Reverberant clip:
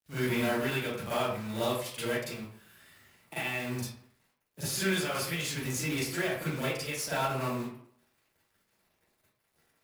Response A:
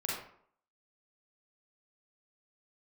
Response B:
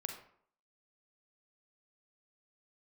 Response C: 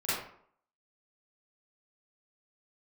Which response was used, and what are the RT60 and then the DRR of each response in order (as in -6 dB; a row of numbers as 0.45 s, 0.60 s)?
C; 0.60 s, 0.60 s, 0.60 s; -5.5 dB, 3.5 dB, -14.0 dB